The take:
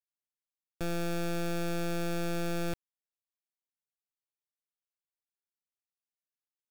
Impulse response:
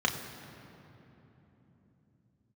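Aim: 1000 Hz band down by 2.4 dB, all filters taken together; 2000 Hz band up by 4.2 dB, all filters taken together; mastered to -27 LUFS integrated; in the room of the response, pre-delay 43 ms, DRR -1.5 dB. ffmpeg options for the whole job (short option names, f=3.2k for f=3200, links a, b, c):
-filter_complex "[0:a]equalizer=f=1k:t=o:g=-7.5,equalizer=f=2k:t=o:g=8.5,asplit=2[a][b];[1:a]atrim=start_sample=2205,adelay=43[c];[b][c]afir=irnorm=-1:irlink=0,volume=-9dB[d];[a][d]amix=inputs=2:normalize=0,volume=3dB"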